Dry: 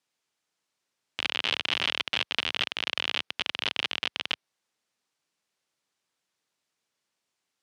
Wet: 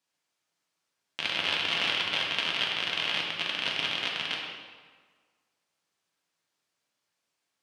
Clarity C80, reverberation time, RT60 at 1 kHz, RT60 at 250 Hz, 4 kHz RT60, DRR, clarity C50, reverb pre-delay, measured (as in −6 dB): 3.5 dB, 1.6 s, 1.6 s, 1.5 s, 1.1 s, −2.5 dB, 1.5 dB, 3 ms